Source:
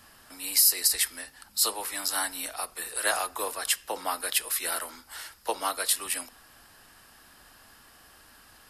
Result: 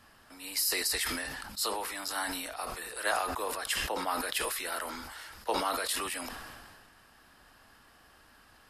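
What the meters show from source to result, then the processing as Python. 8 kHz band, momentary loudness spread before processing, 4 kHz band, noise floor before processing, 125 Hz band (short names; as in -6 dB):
-8.5 dB, 16 LU, -4.0 dB, -56 dBFS, n/a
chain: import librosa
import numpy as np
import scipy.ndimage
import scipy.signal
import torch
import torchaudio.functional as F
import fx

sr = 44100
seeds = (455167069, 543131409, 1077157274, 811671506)

y = fx.high_shelf(x, sr, hz=5100.0, db=-10.0)
y = fx.sustainer(y, sr, db_per_s=30.0)
y = F.gain(torch.from_numpy(y), -2.5).numpy()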